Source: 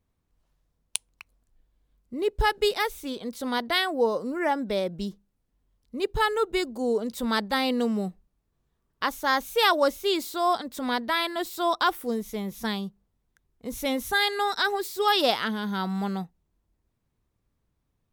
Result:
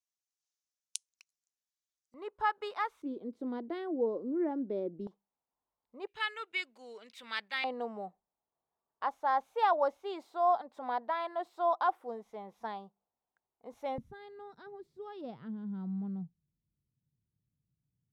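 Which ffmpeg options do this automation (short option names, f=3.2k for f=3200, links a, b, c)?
-af "asetnsamples=n=441:p=0,asendcmd='2.14 bandpass f 1100;3.02 bandpass f 330;5.07 bandpass f 870;6.07 bandpass f 2400;7.64 bandpass f 790;13.98 bandpass f 140',bandpass=f=6.2k:t=q:w=3:csg=0"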